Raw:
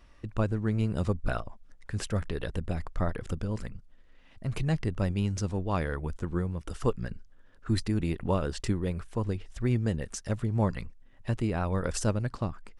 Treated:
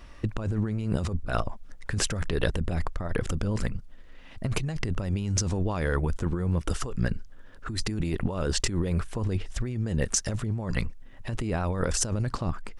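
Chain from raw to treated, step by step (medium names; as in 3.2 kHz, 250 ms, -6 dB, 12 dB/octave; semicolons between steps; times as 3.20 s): dynamic bell 6.4 kHz, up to +5 dB, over -55 dBFS, Q 1.5; compressor with a negative ratio -33 dBFS, ratio -1; trim +6 dB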